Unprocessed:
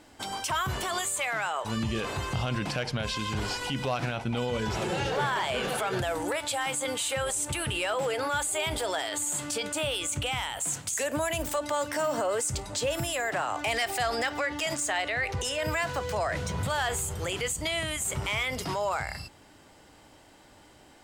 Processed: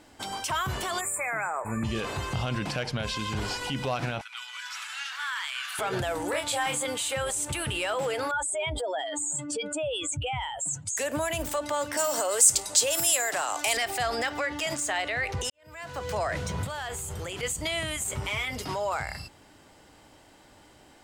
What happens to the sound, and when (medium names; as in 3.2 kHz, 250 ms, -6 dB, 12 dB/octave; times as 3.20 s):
1.00–1.84 s: spectral selection erased 2.6–6.9 kHz
4.21–5.79 s: steep high-pass 1.2 kHz
6.30–6.83 s: doubling 28 ms -3.5 dB
8.31–10.97 s: spectral contrast enhancement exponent 2.1
11.97–13.77 s: tone controls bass -13 dB, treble +14 dB
15.50–16.10 s: fade in quadratic
16.64–17.43 s: compression, threshold -31 dBFS
18.04–18.92 s: comb of notches 170 Hz